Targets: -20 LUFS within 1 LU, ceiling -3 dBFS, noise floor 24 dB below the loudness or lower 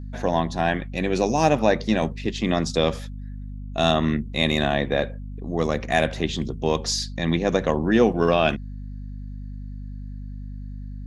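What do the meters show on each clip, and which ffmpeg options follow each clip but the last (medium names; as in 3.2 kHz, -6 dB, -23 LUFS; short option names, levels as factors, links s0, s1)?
hum 50 Hz; highest harmonic 250 Hz; hum level -31 dBFS; loudness -23.0 LUFS; peak level -4.5 dBFS; loudness target -20.0 LUFS
-> -af "bandreject=f=50:t=h:w=6,bandreject=f=100:t=h:w=6,bandreject=f=150:t=h:w=6,bandreject=f=200:t=h:w=6,bandreject=f=250:t=h:w=6"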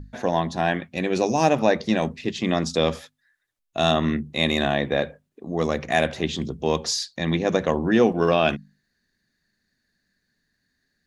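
hum not found; loudness -23.0 LUFS; peak level -5.0 dBFS; loudness target -20.0 LUFS
-> -af "volume=1.41,alimiter=limit=0.708:level=0:latency=1"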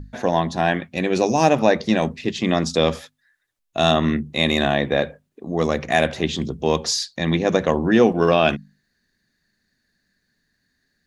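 loudness -20.0 LUFS; peak level -3.0 dBFS; noise floor -73 dBFS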